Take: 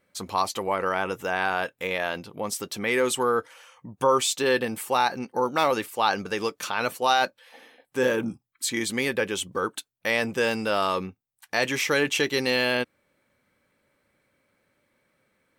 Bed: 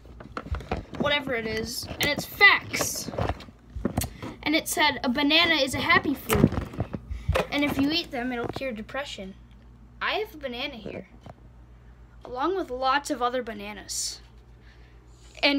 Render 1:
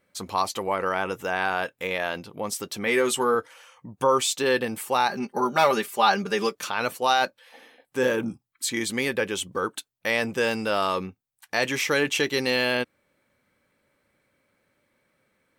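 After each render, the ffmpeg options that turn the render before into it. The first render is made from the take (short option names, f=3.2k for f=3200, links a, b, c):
-filter_complex "[0:a]asettb=1/sr,asplit=3[a][b][c];[a]atrim=end=2.854[d];[b]atrim=start=2.85:end=3.35,asetpts=PTS-STARTPTS,afade=t=in:d=0.004:c=qsin,afade=t=out:st=0.496:d=0.004:c=qsin,asplit=2[e][f];[f]adelay=13,volume=-6dB[g];[e][g]amix=inputs=2:normalize=0,atrim=end_sample=22050[h];[c]atrim=start=3.346[i];[d][h]acrossfade=d=0.004:c1=hsin:c2=qsin[j];[j][i]acrossfade=d=0.004:c1=qsin:c2=hsin,asettb=1/sr,asplit=3[k][l][m];[k]atrim=end=5.084[n];[l]atrim=start=5.08:end=6.55,asetpts=PTS-STARTPTS,afade=t=in:d=0.004:c=qsin,afade=t=out:st=1.466:d=0.004:c=qsin,aecho=1:1:5:0.95,atrim=end_sample=64827[o];[m]atrim=start=6.546[p];[n][o]acrossfade=d=0.004:c1=hsin:c2=qsin[q];[q][p]acrossfade=d=0.004:c1=qsin:c2=hsin"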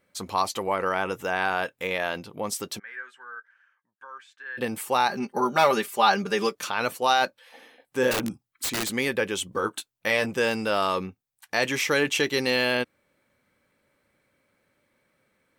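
-filter_complex "[0:a]asplit=3[a][b][c];[a]afade=t=out:st=2.78:d=0.02[d];[b]bandpass=f=1.6k:t=q:w=14,afade=t=in:st=2.78:d=0.02,afade=t=out:st=4.57:d=0.02[e];[c]afade=t=in:st=4.57:d=0.02[f];[d][e][f]amix=inputs=3:normalize=0,asettb=1/sr,asplit=3[g][h][i];[g]atrim=end=8.114[j];[h]atrim=start=8.11:end=8.93,asetpts=PTS-STARTPTS,afade=t=in:d=0.004:c=qsin,afade=t=out:st=0.816:d=0.004:c=qsin,aeval=exprs='(mod(11.2*val(0)+1,2)-1)/11.2':c=same[k];[i]atrim=start=8.926[l];[j][k]acrossfade=d=0.004:c1=hsin:c2=qsin[m];[m][l]acrossfade=d=0.004:c1=qsin:c2=hsin,asettb=1/sr,asplit=3[n][o][p];[n]atrim=end=9.514[q];[o]atrim=start=9.51:end=10.26,asetpts=PTS-STARTPTS,afade=t=in:d=0.004:c=qsin,afade=t=out:st=0.746:d=0.004:c=qsin,asplit=2[r][s];[s]adelay=19,volume=-8dB[t];[r][t]amix=inputs=2:normalize=0,atrim=end_sample=33075[u];[p]atrim=start=10.256[v];[q][u]acrossfade=d=0.004:c1=hsin:c2=qsin[w];[w][v]acrossfade=d=0.004:c1=qsin:c2=hsin"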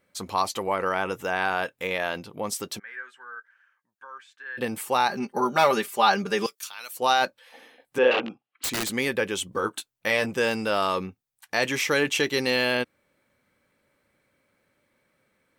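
-filter_complex "[0:a]asettb=1/sr,asplit=3[a][b][c];[a]atrim=end=6.464[d];[b]atrim=start=6.46:end=6.97,asetpts=PTS-STARTPTS,afade=t=in:d=0.004:c=qsin,afade=t=out:st=0.506:d=0.004:c=qsin,aderivative[e];[c]atrim=start=6.966[f];[d][e]acrossfade=d=0.004:c1=hsin:c2=qsin[g];[g][f]acrossfade=d=0.004:c1=qsin:c2=hsin,asettb=1/sr,asplit=3[h][i][j];[h]atrim=end=7.984[k];[i]atrim=start=7.98:end=8.64,asetpts=PTS-STARTPTS,afade=t=in:d=0.004:c=qsin,afade=t=out:st=0.656:d=0.004:c=qsin,highpass=290,equalizer=f=490:t=q:w=4:g=5,equalizer=f=750:t=q:w=4:g=7,equalizer=f=1.2k:t=q:w=4:g=3,equalizer=f=2.8k:t=q:w=4:g=9,lowpass=f=3.6k:w=0.5412,lowpass=f=3.6k:w=1.3066[l];[j]atrim=start=8.636[m];[k][l]acrossfade=d=0.004:c1=hsin:c2=qsin[n];[n][m]acrossfade=d=0.004:c1=qsin:c2=hsin"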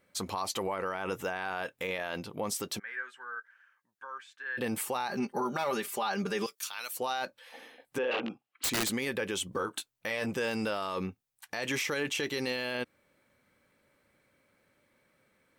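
-af "acompressor=threshold=-24dB:ratio=2.5,alimiter=limit=-23dB:level=0:latency=1:release=53"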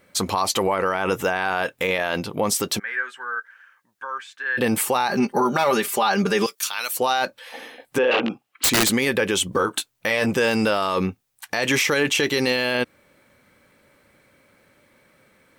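-af "volume=12dB"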